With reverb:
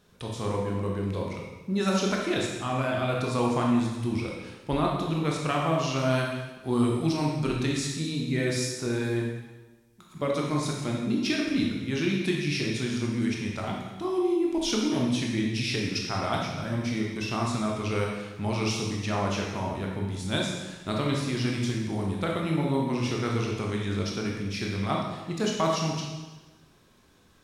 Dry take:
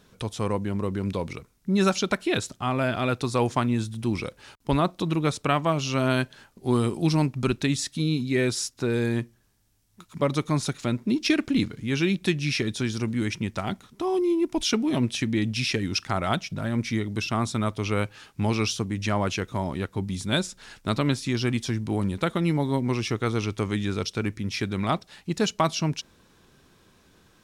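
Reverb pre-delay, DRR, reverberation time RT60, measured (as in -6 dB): 11 ms, -2.0 dB, 1.2 s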